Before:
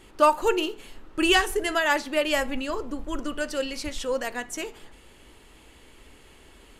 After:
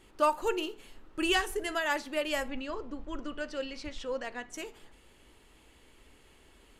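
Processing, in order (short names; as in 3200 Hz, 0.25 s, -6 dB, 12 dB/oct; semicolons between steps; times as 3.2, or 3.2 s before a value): 2.48–4.54 LPF 4900 Hz 12 dB/oct; gain -7.5 dB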